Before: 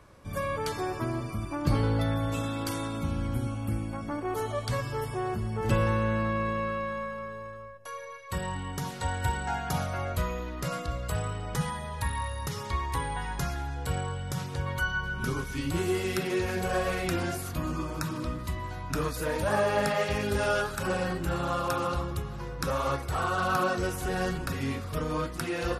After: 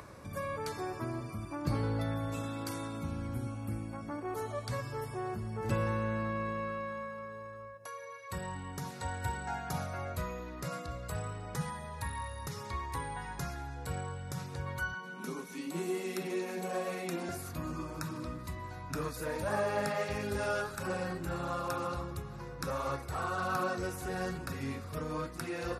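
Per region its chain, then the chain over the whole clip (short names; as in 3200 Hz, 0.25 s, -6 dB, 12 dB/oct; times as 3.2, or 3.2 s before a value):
14.94–17.29 steep high-pass 160 Hz 96 dB/oct + bell 1500 Hz -6.5 dB 0.52 oct + notch 4900 Hz, Q 9.7
whole clip: HPF 68 Hz; bell 3100 Hz -7.5 dB 0.27 oct; upward compressor, threshold -34 dBFS; gain -6 dB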